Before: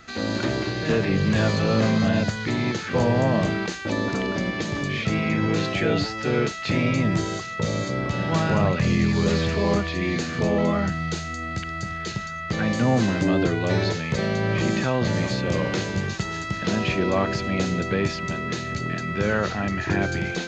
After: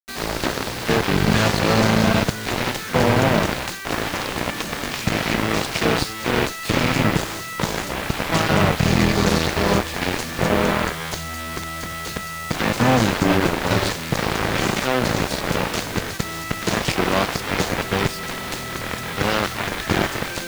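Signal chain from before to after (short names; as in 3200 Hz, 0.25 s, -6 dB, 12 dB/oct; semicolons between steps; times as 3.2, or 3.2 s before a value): added harmonics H 2 -12 dB, 3 -25 dB, 7 -12 dB, 8 -23 dB, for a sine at -11 dBFS; requantised 6-bit, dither none; gain +3 dB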